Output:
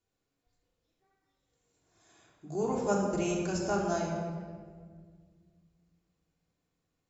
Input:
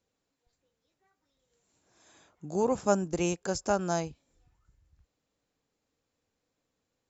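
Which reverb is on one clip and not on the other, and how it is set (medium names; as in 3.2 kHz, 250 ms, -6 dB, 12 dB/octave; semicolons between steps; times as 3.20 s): simulated room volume 2400 m³, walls mixed, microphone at 3.3 m; trim -7 dB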